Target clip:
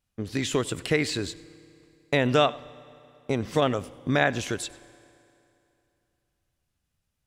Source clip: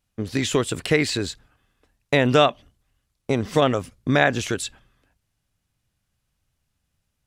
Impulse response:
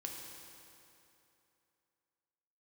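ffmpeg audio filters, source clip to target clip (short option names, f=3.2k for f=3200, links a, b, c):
-filter_complex "[0:a]asplit=2[a][b];[1:a]atrim=start_sample=2205,adelay=97[c];[b][c]afir=irnorm=-1:irlink=0,volume=-17.5dB[d];[a][d]amix=inputs=2:normalize=0,volume=-4.5dB"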